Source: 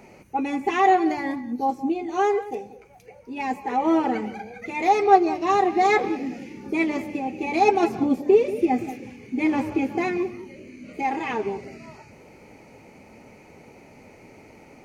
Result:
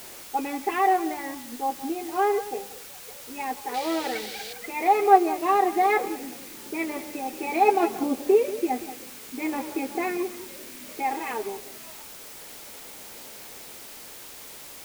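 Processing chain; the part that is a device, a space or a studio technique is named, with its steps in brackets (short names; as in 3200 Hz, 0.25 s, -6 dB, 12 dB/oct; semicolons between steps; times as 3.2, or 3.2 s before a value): shortwave radio (BPF 340–2700 Hz; tremolo 0.38 Hz, depth 39%; white noise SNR 16 dB); 3.74–4.53 graphic EQ 125/250/500/1000/2000/4000 Hz +3/-4/+4/-6/+6/+12 dB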